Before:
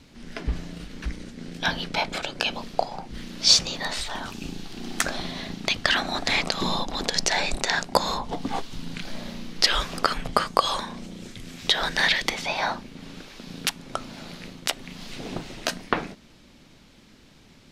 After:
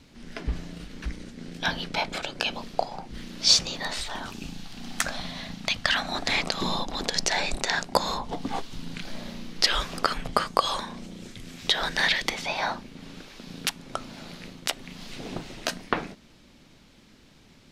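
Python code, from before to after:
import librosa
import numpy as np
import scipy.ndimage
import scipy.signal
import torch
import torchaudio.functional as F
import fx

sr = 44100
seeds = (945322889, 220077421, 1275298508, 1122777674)

y = fx.peak_eq(x, sr, hz=370.0, db=-13.0, octaves=0.51, at=(4.44, 6.1))
y = y * librosa.db_to_amplitude(-2.0)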